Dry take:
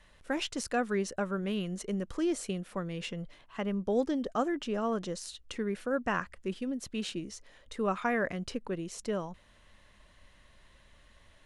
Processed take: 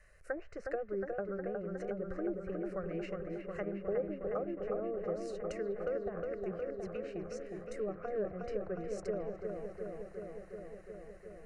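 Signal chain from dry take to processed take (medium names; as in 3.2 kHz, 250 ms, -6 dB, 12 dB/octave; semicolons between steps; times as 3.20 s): low-pass that closes with the level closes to 460 Hz, closed at -27.5 dBFS; static phaser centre 930 Hz, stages 6; on a send: feedback echo behind a low-pass 362 ms, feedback 78%, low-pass 2 kHz, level -4 dB; on the sum: trim -1 dB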